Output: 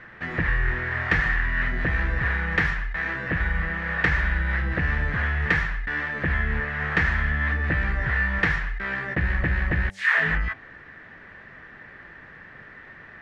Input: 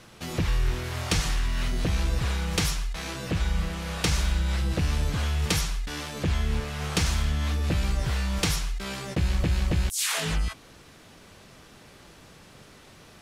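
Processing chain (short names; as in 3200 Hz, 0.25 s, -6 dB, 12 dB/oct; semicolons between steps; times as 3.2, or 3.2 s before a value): synth low-pass 1800 Hz, resonance Q 10; de-hum 96.26 Hz, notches 9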